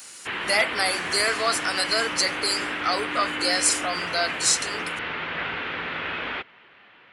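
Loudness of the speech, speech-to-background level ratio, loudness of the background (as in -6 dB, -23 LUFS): -23.5 LUFS, 5.0 dB, -28.5 LUFS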